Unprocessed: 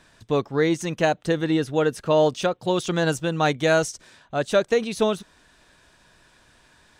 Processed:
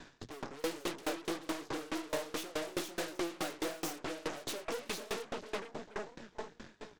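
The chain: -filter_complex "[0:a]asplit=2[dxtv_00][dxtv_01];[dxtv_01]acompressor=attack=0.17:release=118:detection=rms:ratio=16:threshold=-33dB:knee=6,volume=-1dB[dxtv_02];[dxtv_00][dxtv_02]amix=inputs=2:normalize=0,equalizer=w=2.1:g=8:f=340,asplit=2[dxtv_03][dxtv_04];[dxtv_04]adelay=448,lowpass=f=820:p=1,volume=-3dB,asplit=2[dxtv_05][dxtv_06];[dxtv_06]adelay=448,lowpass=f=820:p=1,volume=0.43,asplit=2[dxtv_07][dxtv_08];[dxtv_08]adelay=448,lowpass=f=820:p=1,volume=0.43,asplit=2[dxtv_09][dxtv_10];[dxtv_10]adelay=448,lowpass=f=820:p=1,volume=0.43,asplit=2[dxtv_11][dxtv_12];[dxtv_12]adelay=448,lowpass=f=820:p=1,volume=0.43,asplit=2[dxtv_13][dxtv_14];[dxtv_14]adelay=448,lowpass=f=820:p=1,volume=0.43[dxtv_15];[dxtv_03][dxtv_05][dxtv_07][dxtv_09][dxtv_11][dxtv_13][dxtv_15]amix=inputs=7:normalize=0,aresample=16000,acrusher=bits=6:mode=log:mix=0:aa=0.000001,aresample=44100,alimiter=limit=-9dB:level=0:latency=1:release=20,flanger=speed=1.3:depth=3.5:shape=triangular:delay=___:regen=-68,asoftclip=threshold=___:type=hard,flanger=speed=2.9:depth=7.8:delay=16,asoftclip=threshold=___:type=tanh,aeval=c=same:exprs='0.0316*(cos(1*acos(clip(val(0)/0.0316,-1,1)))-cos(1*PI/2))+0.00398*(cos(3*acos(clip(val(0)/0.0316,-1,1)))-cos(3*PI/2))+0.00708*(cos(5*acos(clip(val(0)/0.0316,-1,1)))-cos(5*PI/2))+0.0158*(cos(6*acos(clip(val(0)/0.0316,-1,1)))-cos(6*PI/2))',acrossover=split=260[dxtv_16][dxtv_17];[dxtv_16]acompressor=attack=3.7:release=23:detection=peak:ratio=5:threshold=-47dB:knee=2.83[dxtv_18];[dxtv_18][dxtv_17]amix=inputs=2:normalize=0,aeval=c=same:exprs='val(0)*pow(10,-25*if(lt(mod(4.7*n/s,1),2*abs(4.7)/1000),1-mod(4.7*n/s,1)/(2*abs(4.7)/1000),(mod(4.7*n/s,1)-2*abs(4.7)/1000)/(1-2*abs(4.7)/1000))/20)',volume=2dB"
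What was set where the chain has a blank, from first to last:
6.9, -21.5dB, -30dB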